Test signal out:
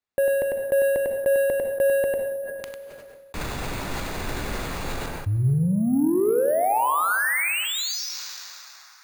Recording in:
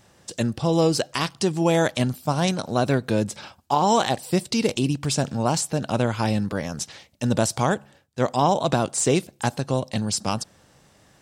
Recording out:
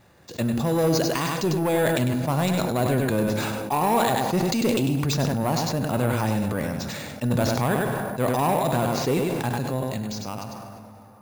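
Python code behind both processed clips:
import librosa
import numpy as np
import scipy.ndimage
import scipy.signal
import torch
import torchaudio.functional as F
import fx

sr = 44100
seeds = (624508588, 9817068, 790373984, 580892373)

y = fx.fade_out_tail(x, sr, length_s=2.36)
y = fx.peak_eq(y, sr, hz=6800.0, db=-11.0, octaves=0.46)
y = fx.notch(y, sr, hz=3100.0, q=8.6)
y = 10.0 ** (-17.0 / 20.0) * np.tanh(y / 10.0 ** (-17.0 / 20.0))
y = y + 10.0 ** (-7.0 / 20.0) * np.pad(y, (int(99 * sr / 1000.0), 0))[:len(y)]
y = fx.rev_plate(y, sr, seeds[0], rt60_s=1.9, hf_ratio=0.65, predelay_ms=0, drr_db=11.5)
y = np.repeat(scipy.signal.resample_poly(y, 1, 4), 4)[:len(y)]
y = fx.sustainer(y, sr, db_per_s=22.0)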